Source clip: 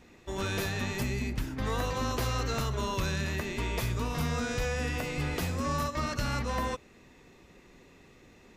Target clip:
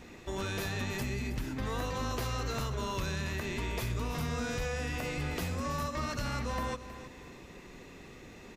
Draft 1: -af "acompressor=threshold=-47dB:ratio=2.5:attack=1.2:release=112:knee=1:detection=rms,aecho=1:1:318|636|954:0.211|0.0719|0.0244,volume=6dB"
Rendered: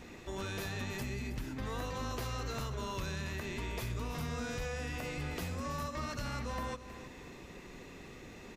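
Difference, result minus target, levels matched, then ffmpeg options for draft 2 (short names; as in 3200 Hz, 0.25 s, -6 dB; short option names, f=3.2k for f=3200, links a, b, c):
compressor: peak gain reduction +4 dB
-af "acompressor=threshold=-40.5dB:ratio=2.5:attack=1.2:release=112:knee=1:detection=rms,aecho=1:1:318|636|954:0.211|0.0719|0.0244,volume=6dB"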